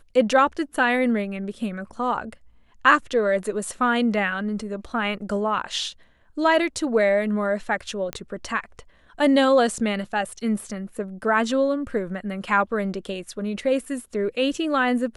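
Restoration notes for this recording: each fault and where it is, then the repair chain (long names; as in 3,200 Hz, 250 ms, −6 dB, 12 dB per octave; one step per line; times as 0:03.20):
0:08.13: click −13 dBFS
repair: click removal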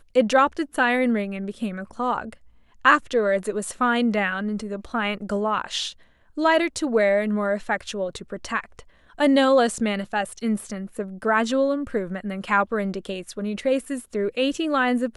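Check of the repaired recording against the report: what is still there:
none of them is left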